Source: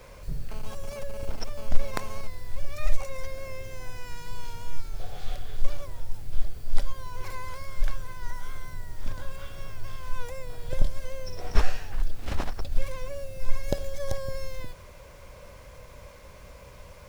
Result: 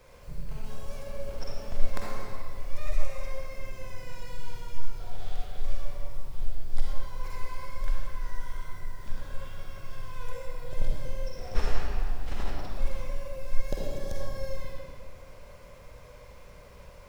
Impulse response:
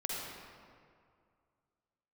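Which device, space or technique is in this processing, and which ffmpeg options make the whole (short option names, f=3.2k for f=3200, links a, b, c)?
stairwell: -filter_complex "[1:a]atrim=start_sample=2205[a];[0:a][a]afir=irnorm=-1:irlink=0,volume=-6dB"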